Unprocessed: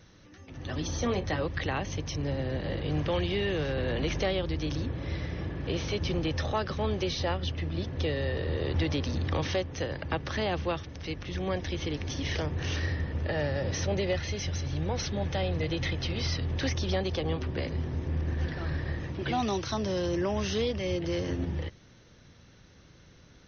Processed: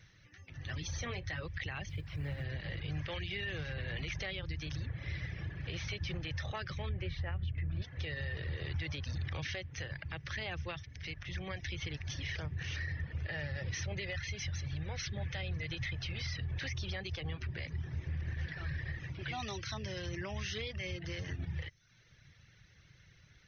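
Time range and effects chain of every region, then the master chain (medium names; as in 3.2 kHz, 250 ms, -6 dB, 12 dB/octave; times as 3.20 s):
1.89–2.44 s: one-bit delta coder 32 kbps, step -48 dBFS + low-pass 4 kHz + companded quantiser 8-bit
6.89–7.82 s: low-pass 2.2 kHz + bass shelf 130 Hz +11.5 dB
whole clip: reverb removal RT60 0.69 s; graphic EQ 125/250/500/1000/2000 Hz +7/-11/-5/-6/+9 dB; peak limiter -24.5 dBFS; trim -5.5 dB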